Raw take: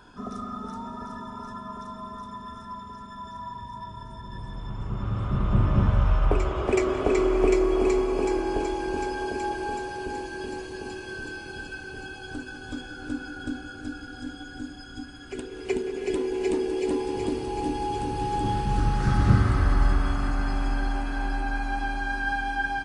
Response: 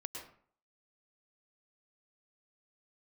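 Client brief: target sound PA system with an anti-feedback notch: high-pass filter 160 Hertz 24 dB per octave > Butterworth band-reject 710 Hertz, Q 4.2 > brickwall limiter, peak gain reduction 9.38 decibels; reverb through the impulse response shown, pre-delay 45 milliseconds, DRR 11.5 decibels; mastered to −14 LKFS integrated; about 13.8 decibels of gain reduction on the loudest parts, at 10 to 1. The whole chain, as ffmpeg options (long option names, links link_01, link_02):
-filter_complex "[0:a]acompressor=threshold=-29dB:ratio=10,asplit=2[link_01][link_02];[1:a]atrim=start_sample=2205,adelay=45[link_03];[link_02][link_03]afir=irnorm=-1:irlink=0,volume=-10dB[link_04];[link_01][link_04]amix=inputs=2:normalize=0,highpass=frequency=160:width=0.5412,highpass=frequency=160:width=1.3066,asuperstop=centerf=710:order=8:qfactor=4.2,volume=24.5dB,alimiter=limit=-5.5dB:level=0:latency=1"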